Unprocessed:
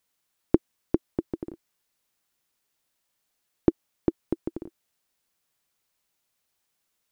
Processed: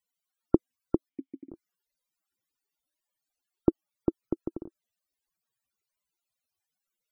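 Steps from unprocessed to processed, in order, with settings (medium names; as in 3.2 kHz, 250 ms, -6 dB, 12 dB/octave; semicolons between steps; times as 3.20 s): 1.09–1.51 s: vowel filter i; loudest bins only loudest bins 64; trim -2 dB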